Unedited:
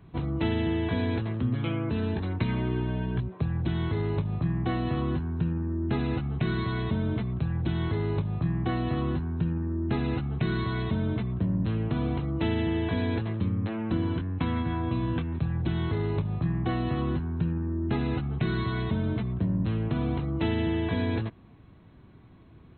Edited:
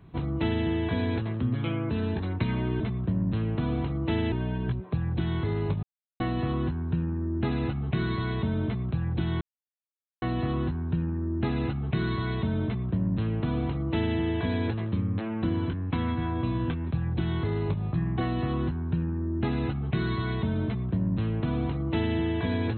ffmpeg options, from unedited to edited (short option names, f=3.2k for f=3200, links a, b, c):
-filter_complex "[0:a]asplit=7[a][b][c][d][e][f][g];[a]atrim=end=2.802[h];[b]atrim=start=11.128:end=12.652[i];[c]atrim=start=2.798:end=4.31,asetpts=PTS-STARTPTS,afade=t=out:st=1.508:d=0.004:c=hsin[j];[d]atrim=start=4.31:end=4.68,asetpts=PTS-STARTPTS,volume=0[k];[e]atrim=start=4.68:end=7.89,asetpts=PTS-STARTPTS,afade=t=in:d=0.004:c=hsin,afade=t=out:st=3.206:d=0.004:c=hsin[l];[f]atrim=start=7.89:end=8.7,asetpts=PTS-STARTPTS,volume=0[m];[g]atrim=start=8.7,asetpts=PTS-STARTPTS,afade=t=in:d=0.004:c=hsin[n];[h][i]acrossfade=d=0.004:c1=hsin:c2=hsin[o];[j][k][l][m][n]concat=n=5:v=0:a=1[p];[o][p]acrossfade=d=0.004:c1=hsin:c2=hsin"